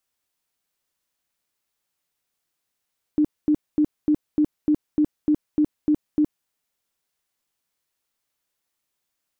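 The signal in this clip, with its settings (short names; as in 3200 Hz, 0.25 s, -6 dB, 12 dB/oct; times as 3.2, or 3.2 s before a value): tone bursts 301 Hz, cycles 20, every 0.30 s, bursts 11, -14.5 dBFS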